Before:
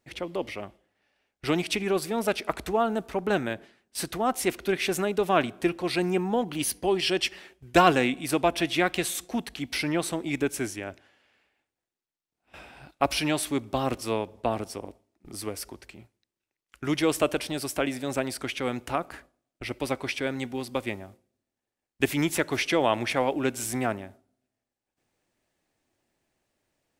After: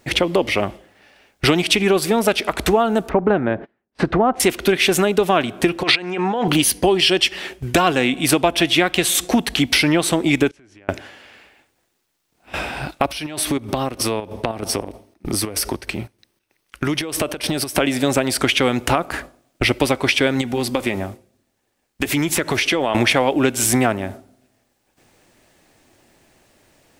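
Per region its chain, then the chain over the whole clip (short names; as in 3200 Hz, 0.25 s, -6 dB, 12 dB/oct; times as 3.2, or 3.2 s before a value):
3.09–4.4 LPF 1400 Hz + gate -52 dBFS, range -26 dB
5.83–6.48 LPF 2300 Hz + negative-ratio compressor -34 dBFS + tilt +4 dB/oct
10.49–10.89 LPF 3800 Hz + compressor 16:1, threshold -37 dBFS + flipped gate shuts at -41 dBFS, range -25 dB
13.06–17.78 notch 7200 Hz, Q 6.3 + compressor 12:1, threshold -37 dBFS + chopper 3.2 Hz, depth 60%, duty 65%
20.41–22.95 compressor 4:1, threshold -32 dBFS + flange 1 Hz, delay 0.5 ms, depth 4.5 ms, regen -68%
whole clip: dynamic EQ 3200 Hz, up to +4 dB, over -45 dBFS, Q 2.9; compressor 5:1, threshold -35 dBFS; maximiser +22 dB; gain -1 dB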